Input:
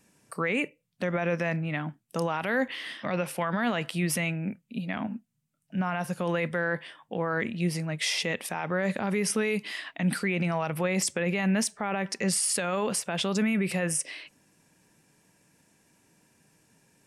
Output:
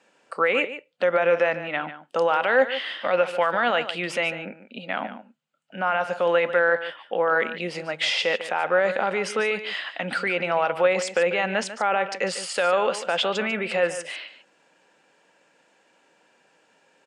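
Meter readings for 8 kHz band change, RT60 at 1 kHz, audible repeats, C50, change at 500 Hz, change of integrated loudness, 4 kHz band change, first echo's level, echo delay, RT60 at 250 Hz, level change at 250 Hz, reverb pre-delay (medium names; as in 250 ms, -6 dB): -7.0 dB, no reverb, 1, no reverb, +9.0 dB, +5.5 dB, +5.5 dB, -12.5 dB, 146 ms, no reverb, -6.0 dB, no reverb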